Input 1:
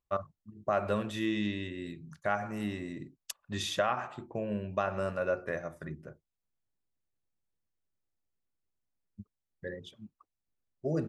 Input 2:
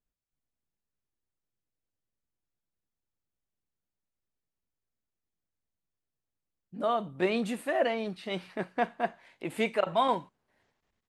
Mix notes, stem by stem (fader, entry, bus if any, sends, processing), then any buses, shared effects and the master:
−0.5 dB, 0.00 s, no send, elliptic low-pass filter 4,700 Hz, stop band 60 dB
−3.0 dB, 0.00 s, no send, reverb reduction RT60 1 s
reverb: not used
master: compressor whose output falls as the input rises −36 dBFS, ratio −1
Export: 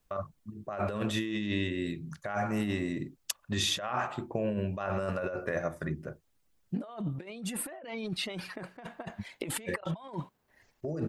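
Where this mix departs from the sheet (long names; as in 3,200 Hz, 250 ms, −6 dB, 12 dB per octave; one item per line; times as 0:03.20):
stem 1: missing elliptic low-pass filter 4,700 Hz, stop band 60 dB
stem 2 −3.0 dB → +8.0 dB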